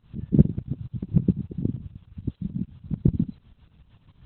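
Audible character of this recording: tremolo saw up 6.8 Hz, depth 85%; Opus

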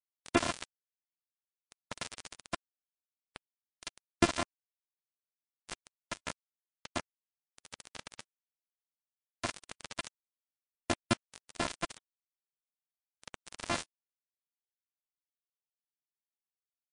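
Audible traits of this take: a buzz of ramps at a fixed pitch in blocks of 128 samples; chopped level 0.53 Hz, depth 60%, duty 35%; a quantiser's noise floor 6-bit, dither none; MP3

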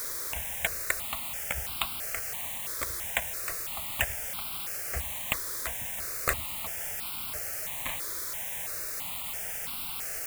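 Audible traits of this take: aliases and images of a low sample rate 5500 Hz, jitter 0%; chopped level 8.3 Hz, depth 65%, duty 55%; a quantiser's noise floor 6-bit, dither triangular; notches that jump at a steady rate 3 Hz 770–1800 Hz

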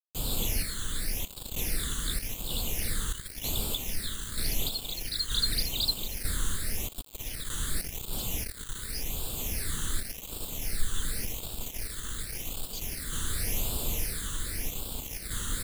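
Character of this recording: random-step tremolo 3.2 Hz, depth 75%; a quantiser's noise floor 6-bit, dither none; phasing stages 8, 0.89 Hz, lowest notch 700–1900 Hz

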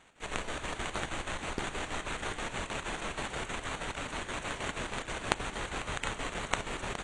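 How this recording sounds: aliases and images of a low sample rate 5100 Hz, jitter 0%; chopped level 6.3 Hz, depth 65%, duty 65%; a quantiser's noise floor 12-bit, dither none; AAC

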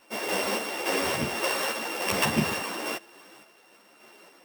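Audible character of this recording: a buzz of ramps at a fixed pitch in blocks of 16 samples; random-step tremolo; a shimmering, thickened sound

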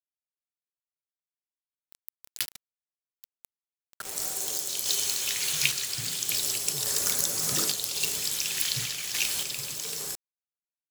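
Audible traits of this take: phasing stages 2, 0.31 Hz, lowest notch 720–2500 Hz; a quantiser's noise floor 6-bit, dither none; random-step tremolo

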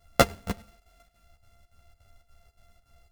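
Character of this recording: a buzz of ramps at a fixed pitch in blocks of 64 samples; chopped level 3.5 Hz, depth 65%, duty 75%; a shimmering, thickened sound

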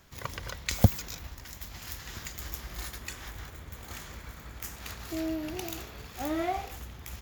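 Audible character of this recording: noise floor -48 dBFS; spectral tilt -4.5 dB/oct

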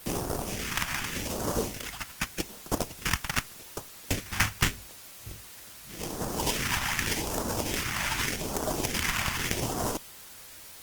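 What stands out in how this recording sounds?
aliases and images of a low sample rate 4100 Hz, jitter 20%; phasing stages 2, 0.84 Hz, lowest notch 430–2200 Hz; a quantiser's noise floor 8-bit, dither triangular; Opus

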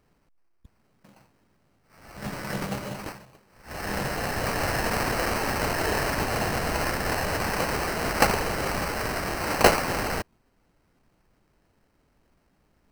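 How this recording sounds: aliases and images of a low sample rate 3500 Hz, jitter 0%

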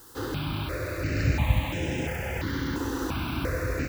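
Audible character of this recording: a quantiser's noise floor 8-bit, dither triangular; notches that jump at a steady rate 2.9 Hz 630–4400 Hz

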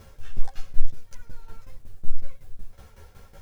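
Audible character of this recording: tremolo saw down 5.4 Hz, depth 80%; a shimmering, thickened sound

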